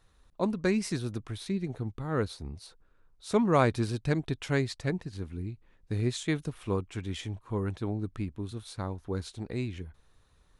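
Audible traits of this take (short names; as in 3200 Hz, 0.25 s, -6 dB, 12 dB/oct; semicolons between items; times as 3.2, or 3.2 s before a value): noise floor -64 dBFS; spectral tilt -6.0 dB/oct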